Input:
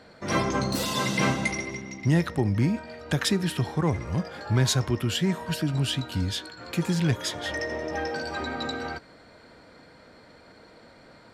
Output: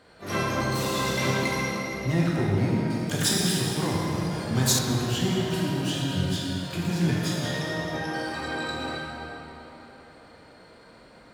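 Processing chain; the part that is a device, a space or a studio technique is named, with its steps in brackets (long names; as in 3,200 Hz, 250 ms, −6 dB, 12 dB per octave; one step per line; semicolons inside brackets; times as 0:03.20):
shimmer-style reverb (pitch-shifted copies added +12 semitones −10 dB; convolution reverb RT60 3.6 s, pre-delay 12 ms, DRR −5 dB)
0:02.90–0:04.79: bass and treble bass −1 dB, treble +10 dB
level −6 dB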